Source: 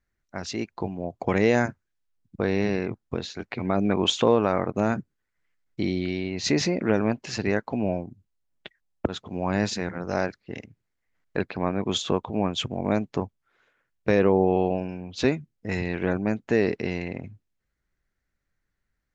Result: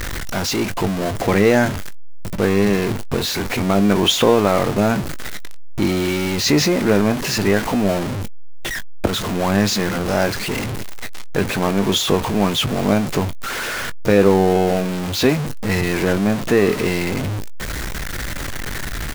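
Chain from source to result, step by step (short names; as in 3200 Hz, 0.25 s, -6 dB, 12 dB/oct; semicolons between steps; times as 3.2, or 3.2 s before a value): zero-crossing step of -23.5 dBFS; doubler 20 ms -12.5 dB; gain +4.5 dB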